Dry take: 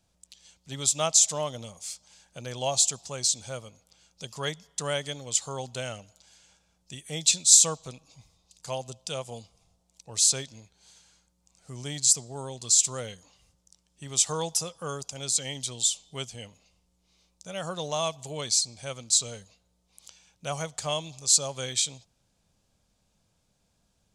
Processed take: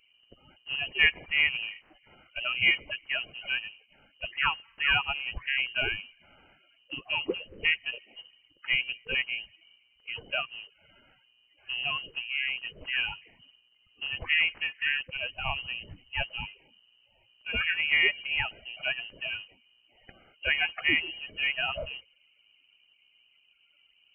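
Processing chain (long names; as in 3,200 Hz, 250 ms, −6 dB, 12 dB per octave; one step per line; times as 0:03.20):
spectral magnitudes quantised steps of 30 dB
voice inversion scrambler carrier 3,000 Hz
level +6.5 dB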